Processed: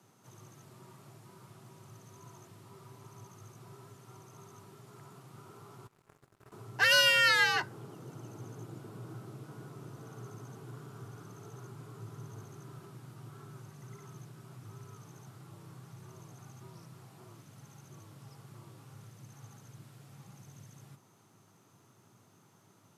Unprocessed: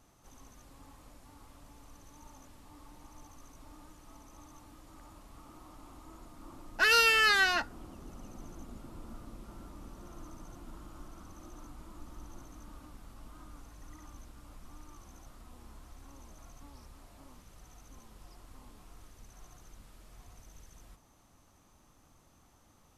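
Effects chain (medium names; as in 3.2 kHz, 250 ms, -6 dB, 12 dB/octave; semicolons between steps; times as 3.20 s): frequency shift +96 Hz; 5.87–6.52 s: power-law waveshaper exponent 3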